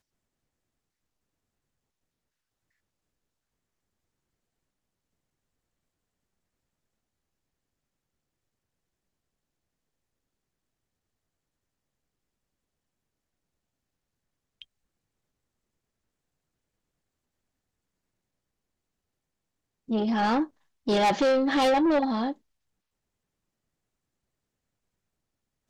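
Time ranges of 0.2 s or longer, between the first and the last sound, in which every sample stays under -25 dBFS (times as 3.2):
20.44–20.88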